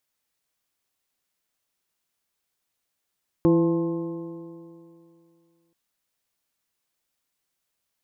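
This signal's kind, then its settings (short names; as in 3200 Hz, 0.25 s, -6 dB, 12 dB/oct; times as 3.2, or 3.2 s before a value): stretched partials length 2.28 s, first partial 166 Hz, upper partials 5.5/-3.5/-20/-14.5/-13 dB, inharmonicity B 0.0039, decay 2.53 s, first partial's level -20.5 dB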